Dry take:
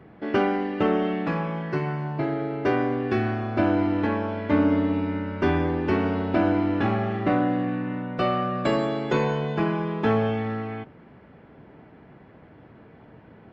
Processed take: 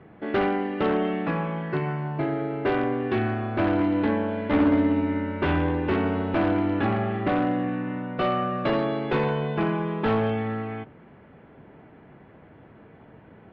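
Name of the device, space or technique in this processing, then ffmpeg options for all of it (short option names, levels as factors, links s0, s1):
synthesiser wavefolder: -filter_complex "[0:a]bandreject=f=60:t=h:w=6,bandreject=f=120:t=h:w=6,bandreject=f=180:t=h:w=6,bandreject=f=240:t=h:w=6,bandreject=f=300:t=h:w=6,aeval=exprs='0.15*(abs(mod(val(0)/0.15+3,4)-2)-1)':c=same,lowpass=f=3700:w=0.5412,lowpass=f=3700:w=1.3066,asettb=1/sr,asplit=3[s0][s1][s2];[s0]atrim=end=3.794[s3];[s1]atrim=start=3.79:end=5.89,asetpts=PTS-STARTPTS,afade=t=in:d=0.004:c=qsin,afade=t=out:st=2.096:d=0.004:c=qsin,asplit=2[s4][s5];[s5]adelay=14,volume=0.501[s6];[s4][s6]amix=inputs=2:normalize=0,atrim=end_sample=92610[s7];[s2]atrim=start=5.886[s8];[s3][s7]acrossfade=d=0.004:c1=hsin:c2=qsin[s9];[s9][s8]acrossfade=d=0.004:c1=qsin:c2=hsin"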